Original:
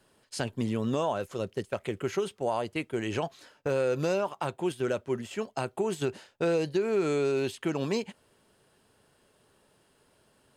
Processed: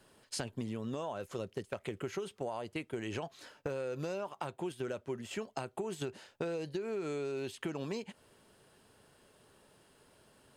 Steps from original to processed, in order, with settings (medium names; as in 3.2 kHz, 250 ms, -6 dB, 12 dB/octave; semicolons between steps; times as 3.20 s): compression 6:1, threshold -37 dBFS, peak gain reduction 13 dB; trim +1.5 dB